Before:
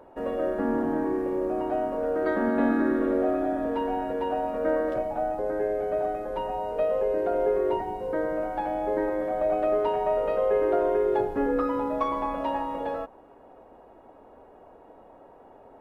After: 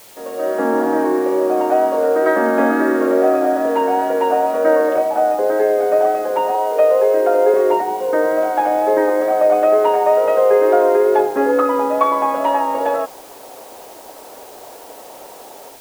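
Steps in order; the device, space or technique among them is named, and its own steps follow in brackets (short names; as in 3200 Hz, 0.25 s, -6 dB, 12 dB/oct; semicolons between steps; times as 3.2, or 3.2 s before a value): dictaphone (BPF 380–3000 Hz; AGC gain up to 14 dB; wow and flutter 22 cents; white noise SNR 27 dB); 6.55–7.54 HPF 260 Hz 24 dB/oct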